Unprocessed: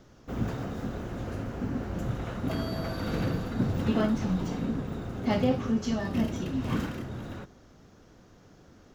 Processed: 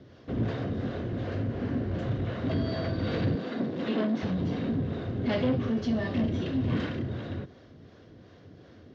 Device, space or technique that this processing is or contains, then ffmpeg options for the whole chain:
guitar amplifier with harmonic tremolo: -filter_complex "[0:a]acrossover=split=420[a][b];[a]aeval=exprs='val(0)*(1-0.5/2+0.5/2*cos(2*PI*2.7*n/s))':c=same[c];[b]aeval=exprs='val(0)*(1-0.5/2-0.5/2*cos(2*PI*2.7*n/s))':c=same[d];[c][d]amix=inputs=2:normalize=0,asoftclip=type=tanh:threshold=-28dB,highpass=93,equalizer=f=94:t=q:w=4:g=6,equalizer=f=190:t=q:w=4:g=-4,equalizer=f=860:t=q:w=4:g=-9,equalizer=f=1.3k:t=q:w=4:g=-8,equalizer=f=2.5k:t=q:w=4:g=-4,lowpass=f=4.2k:w=0.5412,lowpass=f=4.2k:w=1.3066,asettb=1/sr,asplit=3[e][f][g];[e]atrim=end=3.354[h];[f]atrim=start=3.35:end=4.23,asetpts=PTS-STARTPTS,afade=t=in:d=0.004:c=qsin,afade=t=out:st=0.876:d=0.004:c=qsin,highpass=f=190:w=0.5412,highpass=f=190:w=1.3066[i];[g]atrim=start=4.226[j];[h][i]acrossfade=d=0.004:c1=hsin:c2=qsin[k];[k][j]acrossfade=d=0.004:c1=qsin:c2=hsin,volume=7.5dB"

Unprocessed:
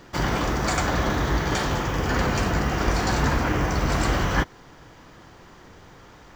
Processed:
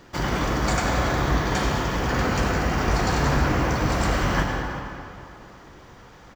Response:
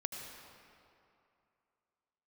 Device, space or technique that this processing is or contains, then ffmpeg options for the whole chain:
cave: -filter_complex "[0:a]aecho=1:1:361:0.178[a];[1:a]atrim=start_sample=2205[b];[a][b]afir=irnorm=-1:irlink=0"

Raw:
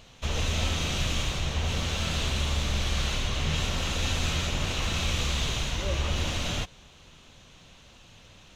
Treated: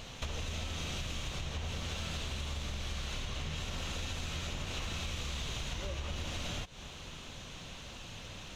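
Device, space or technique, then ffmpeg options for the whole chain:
serial compression, peaks first: -af "acompressor=threshold=-36dB:ratio=6,acompressor=threshold=-43dB:ratio=2.5,volume=6dB"

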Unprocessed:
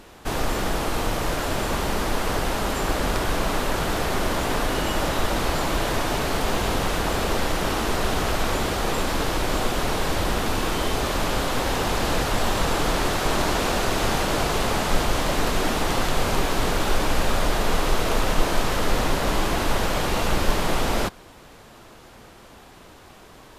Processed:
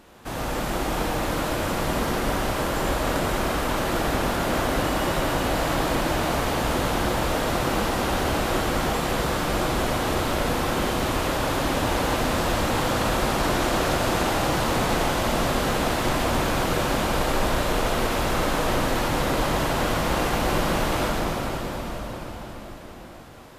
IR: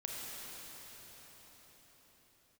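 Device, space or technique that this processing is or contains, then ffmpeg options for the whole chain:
cathedral: -filter_complex "[0:a]highpass=f=56:p=1,bandreject=f=420:w=12[a];[1:a]atrim=start_sample=2205[b];[a][b]afir=irnorm=-1:irlink=0,equalizer=f=5k:w=0.46:g=-3"

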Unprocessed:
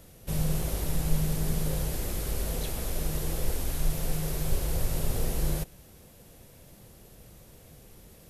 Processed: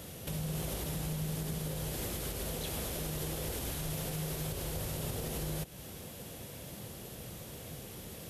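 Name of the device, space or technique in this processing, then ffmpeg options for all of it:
broadcast voice chain: -af "highpass=77,deesser=0.55,acompressor=threshold=-36dB:ratio=4,equalizer=f=3.2k:t=o:w=0.49:g=4,alimiter=level_in=11dB:limit=-24dB:level=0:latency=1:release=245,volume=-11dB,volume=7.5dB"

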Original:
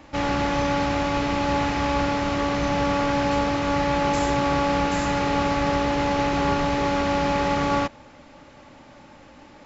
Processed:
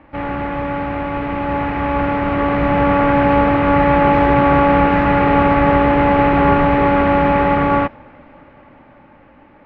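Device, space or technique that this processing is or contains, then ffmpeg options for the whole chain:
action camera in a waterproof case: -af "lowpass=f=2.4k:w=0.5412,lowpass=f=2.4k:w=1.3066,dynaudnorm=f=410:g=11:m=11.5dB,volume=1dB" -ar 16000 -c:a aac -b:a 64k

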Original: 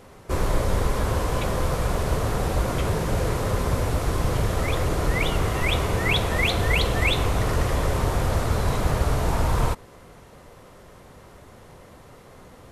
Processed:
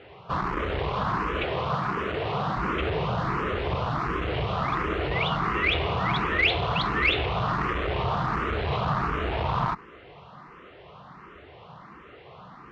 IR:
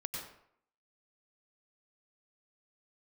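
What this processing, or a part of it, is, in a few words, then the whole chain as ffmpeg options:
barber-pole phaser into a guitar amplifier: -filter_complex "[0:a]asplit=2[a][b];[b]afreqshift=1.4[c];[a][c]amix=inputs=2:normalize=1,asoftclip=type=tanh:threshold=-21dB,highpass=89,equalizer=f=100:t=q:w=4:g=-9,equalizer=f=250:t=q:w=4:g=-7,equalizer=f=540:t=q:w=4:g=-6,equalizer=f=1.2k:t=q:w=4:g=6,equalizer=f=2.8k:t=q:w=4:g=4,lowpass=f=3.6k:w=0.5412,lowpass=f=3.6k:w=1.3066,asettb=1/sr,asplit=3[d][e][f];[d]atrim=end=1.444[g];[e]atrim=start=1.44:end=2.57,asetpts=PTS-STARTPTS,afade=t=in:d=0.004:c=qsin,afade=t=out:st=1.126:d=0.004:c=qsin,highpass=100[h];[f]atrim=start=2.566[i];[g][h]acrossfade=d=0.004:c1=hsin:c2=qsin[j];[j][i]acrossfade=d=0.004:c1=qsin:c2=hsin,volume=5dB"

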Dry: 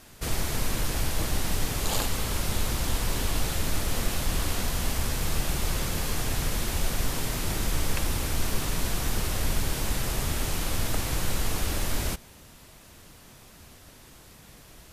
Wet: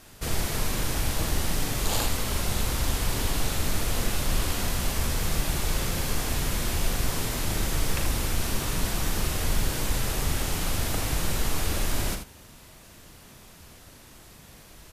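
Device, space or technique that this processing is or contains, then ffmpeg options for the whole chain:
slapback doubling: -filter_complex "[0:a]asplit=3[a][b][c];[b]adelay=38,volume=-8.5dB[d];[c]adelay=80,volume=-8dB[e];[a][d][e]amix=inputs=3:normalize=0"

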